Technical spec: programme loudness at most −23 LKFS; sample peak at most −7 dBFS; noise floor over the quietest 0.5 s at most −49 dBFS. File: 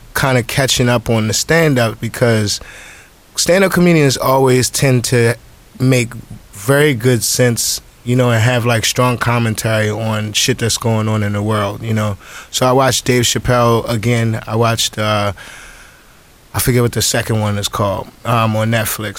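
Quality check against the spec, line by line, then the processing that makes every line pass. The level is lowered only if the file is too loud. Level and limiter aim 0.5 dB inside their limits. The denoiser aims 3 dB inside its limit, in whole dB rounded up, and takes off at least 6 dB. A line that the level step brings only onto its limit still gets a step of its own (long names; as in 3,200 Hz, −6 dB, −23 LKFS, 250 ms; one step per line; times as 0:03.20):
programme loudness −14.0 LKFS: out of spec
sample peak −2.0 dBFS: out of spec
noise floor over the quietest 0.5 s −44 dBFS: out of spec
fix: level −9.5 dB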